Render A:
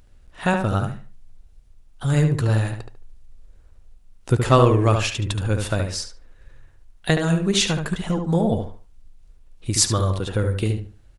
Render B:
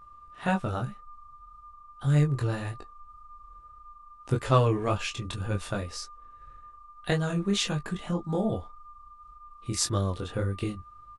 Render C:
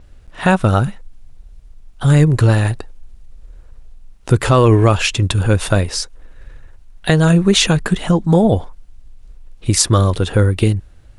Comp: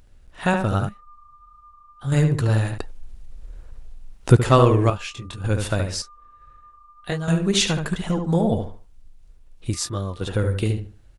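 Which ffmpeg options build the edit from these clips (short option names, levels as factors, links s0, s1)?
-filter_complex "[1:a]asplit=4[s0][s1][s2][s3];[0:a]asplit=6[s4][s5][s6][s7][s8][s9];[s4]atrim=end=0.892[s10];[s0]atrim=start=0.888:end=2.122[s11];[s5]atrim=start=2.118:end=2.782[s12];[2:a]atrim=start=2.778:end=4.362[s13];[s6]atrim=start=4.358:end=4.902[s14];[s1]atrim=start=4.898:end=5.442[s15];[s7]atrim=start=5.438:end=6.022[s16];[s2]atrim=start=6.018:end=7.282[s17];[s8]atrim=start=7.278:end=9.742[s18];[s3]atrim=start=9.738:end=10.212[s19];[s9]atrim=start=10.208[s20];[s10][s11]acrossfade=d=0.004:c1=hsin:c2=hsin[s21];[s21][s12]acrossfade=d=0.004:c1=hsin:c2=hsin[s22];[s22][s13]acrossfade=d=0.004:c1=hsin:c2=hsin[s23];[s23][s14]acrossfade=d=0.004:c1=hsin:c2=hsin[s24];[s24][s15]acrossfade=d=0.004:c1=hsin:c2=hsin[s25];[s25][s16]acrossfade=d=0.004:c1=hsin:c2=hsin[s26];[s26][s17]acrossfade=d=0.004:c1=hsin:c2=hsin[s27];[s27][s18]acrossfade=d=0.004:c1=hsin:c2=hsin[s28];[s28][s19]acrossfade=d=0.004:c1=hsin:c2=hsin[s29];[s29][s20]acrossfade=d=0.004:c1=hsin:c2=hsin"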